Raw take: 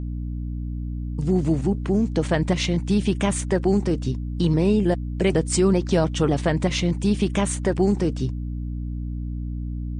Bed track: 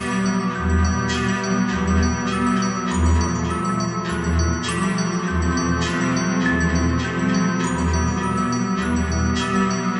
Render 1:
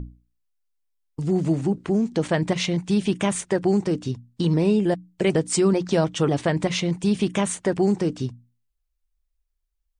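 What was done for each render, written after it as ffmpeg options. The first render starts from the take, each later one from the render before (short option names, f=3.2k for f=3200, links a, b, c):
-af "bandreject=f=60:t=h:w=6,bandreject=f=120:t=h:w=6,bandreject=f=180:t=h:w=6,bandreject=f=240:t=h:w=6,bandreject=f=300:t=h:w=6"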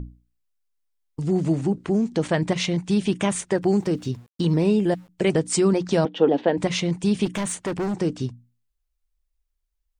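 -filter_complex "[0:a]asettb=1/sr,asplit=3[a][b][c];[a]atrim=end=3.634[d];[b]atrim=start=3.63:end=5.09,asetpts=PTS-STARTPTS,afade=t=in:d=0.004:c=qsin,afade=t=out:st=1.456:d=0.004:c=qsin,aeval=exprs='val(0)*gte(abs(val(0)),0.00316)':c=same[e];[c]atrim=start=5.086[f];[d][e]acrossfade=d=0.004:c1=hsin:c2=qsin[g];[g][f]acrossfade=d=0.004:c1=qsin:c2=hsin,asettb=1/sr,asplit=3[h][i][j];[h]atrim=end=6.054[k];[i]atrim=start=6.05:end=6.58,asetpts=PTS-STARTPTS,afade=t=in:d=0.004:c=qsin,afade=t=out:st=0.526:d=0.004:c=qsin,highpass=f=210:w=0.5412,highpass=f=210:w=1.3066,equalizer=f=260:t=q:w=4:g=6,equalizer=f=480:t=q:w=4:g=7,equalizer=f=820:t=q:w=4:g=4,equalizer=f=1.2k:t=q:w=4:g=-9,equalizer=f=2.2k:t=q:w=4:g=-8,lowpass=f=3.5k:w=0.5412,lowpass=f=3.5k:w=1.3066[l];[j]atrim=start=6.576[m];[k][l]acrossfade=d=0.004:c1=hsin:c2=qsin[n];[n][m]acrossfade=d=0.004:c1=qsin:c2=hsin,asettb=1/sr,asplit=3[o][p][q];[o]atrim=end=7.254[r];[p]atrim=start=7.25:end=7.97,asetpts=PTS-STARTPTS,afade=t=in:d=0.004:c=qsin,afade=t=out:st=0.716:d=0.004:c=qsin,asoftclip=type=hard:threshold=-22.5dB[s];[q]atrim=start=7.966[t];[r][s]acrossfade=d=0.004:c1=hsin:c2=qsin[u];[u][t]acrossfade=d=0.004:c1=qsin:c2=hsin"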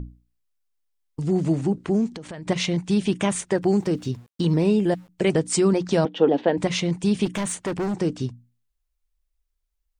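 -filter_complex "[0:a]asettb=1/sr,asplit=3[a][b][c];[a]atrim=end=2.074[d];[b]atrim=start=2.07:end=2.47,asetpts=PTS-STARTPTS,afade=t=in:d=0.004:c=qsin,afade=t=out:st=0.396:d=0.004:c=qsin,acompressor=threshold=-32dB:ratio=20:attack=3.2:release=140:knee=1:detection=peak[e];[c]atrim=start=2.466[f];[d][e]acrossfade=d=0.004:c1=hsin:c2=qsin[g];[g][f]acrossfade=d=0.004:c1=qsin:c2=hsin"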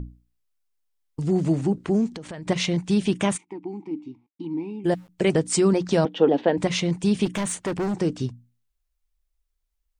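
-filter_complex "[0:a]asplit=3[a][b][c];[a]afade=t=out:st=3.36:d=0.02[d];[b]asplit=3[e][f][g];[e]bandpass=f=300:t=q:w=8,volume=0dB[h];[f]bandpass=f=870:t=q:w=8,volume=-6dB[i];[g]bandpass=f=2.24k:t=q:w=8,volume=-9dB[j];[h][i][j]amix=inputs=3:normalize=0,afade=t=in:st=3.36:d=0.02,afade=t=out:st=4.84:d=0.02[k];[c]afade=t=in:st=4.84:d=0.02[l];[d][k][l]amix=inputs=3:normalize=0"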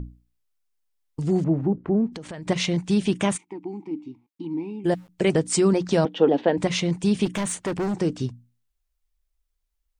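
-filter_complex "[0:a]asettb=1/sr,asplit=3[a][b][c];[a]atrim=end=1.444[d];[b]atrim=start=1.44:end=2.13,asetpts=PTS-STARTPTS,afade=t=in:d=0.004:c=qsin,afade=t=out:st=0.686:d=0.004:c=qsin,lowpass=1.2k[e];[c]atrim=start=2.126[f];[d][e]acrossfade=d=0.004:c1=hsin:c2=qsin[g];[g][f]acrossfade=d=0.004:c1=qsin:c2=hsin"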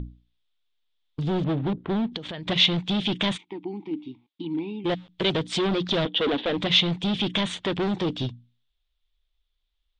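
-af "volume=22dB,asoftclip=hard,volume=-22dB,lowpass=f=3.5k:t=q:w=6.1"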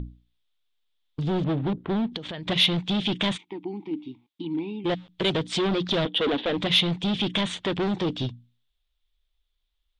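-af "asoftclip=type=tanh:threshold=-10dB"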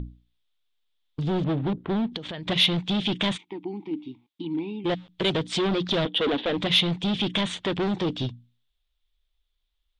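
-af anull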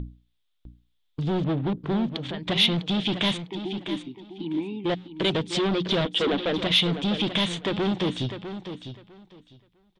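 -af "aecho=1:1:652|1304|1956:0.316|0.0601|0.0114"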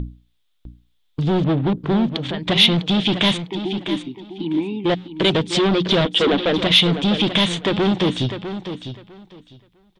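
-af "volume=7dB"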